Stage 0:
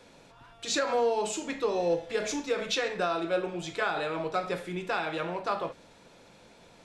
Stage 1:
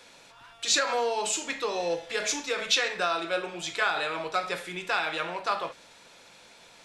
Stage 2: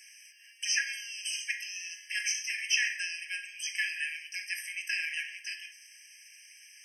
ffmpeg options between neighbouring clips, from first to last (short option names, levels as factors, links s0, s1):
-af "tiltshelf=f=710:g=-7.5"
-filter_complex "[0:a]acrossover=split=4600[s0][s1];[s1]acompressor=threshold=0.0112:ratio=4:attack=1:release=60[s2];[s0][s2]amix=inputs=2:normalize=0,bass=f=250:g=-9,treble=f=4000:g=9,afftfilt=real='re*eq(mod(floor(b*sr/1024/1600),2),1)':imag='im*eq(mod(floor(b*sr/1024/1600),2),1)':win_size=1024:overlap=0.75"